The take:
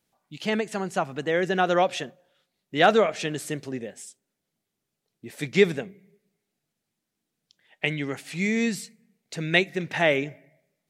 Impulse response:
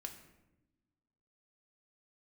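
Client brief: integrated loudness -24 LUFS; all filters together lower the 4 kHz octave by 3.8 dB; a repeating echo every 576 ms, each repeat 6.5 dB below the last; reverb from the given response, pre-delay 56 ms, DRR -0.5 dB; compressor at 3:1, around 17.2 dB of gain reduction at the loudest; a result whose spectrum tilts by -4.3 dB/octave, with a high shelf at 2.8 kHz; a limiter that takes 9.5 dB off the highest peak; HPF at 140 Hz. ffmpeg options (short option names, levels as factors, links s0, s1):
-filter_complex "[0:a]highpass=140,highshelf=f=2800:g=3.5,equalizer=f=4000:t=o:g=-8,acompressor=threshold=0.0141:ratio=3,alimiter=level_in=1.58:limit=0.0631:level=0:latency=1,volume=0.631,aecho=1:1:576|1152|1728|2304|2880|3456:0.473|0.222|0.105|0.0491|0.0231|0.0109,asplit=2[s0][s1];[1:a]atrim=start_sample=2205,adelay=56[s2];[s1][s2]afir=irnorm=-1:irlink=0,volume=1.58[s3];[s0][s3]amix=inputs=2:normalize=0,volume=4.47"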